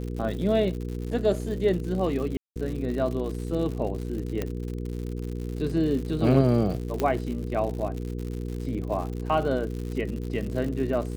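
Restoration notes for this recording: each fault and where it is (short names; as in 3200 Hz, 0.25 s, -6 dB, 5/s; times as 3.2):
crackle 120/s -33 dBFS
hum 60 Hz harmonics 8 -32 dBFS
2.37–2.56 gap 0.188 s
4.42 pop -15 dBFS
7 pop -13 dBFS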